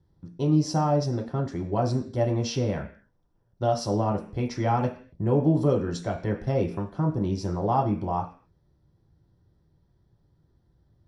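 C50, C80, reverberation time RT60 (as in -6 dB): 11.0 dB, 15.5 dB, 0.45 s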